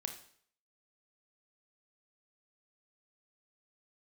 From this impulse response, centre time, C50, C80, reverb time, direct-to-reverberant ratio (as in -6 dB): 15 ms, 9.0 dB, 13.0 dB, 0.60 s, 5.0 dB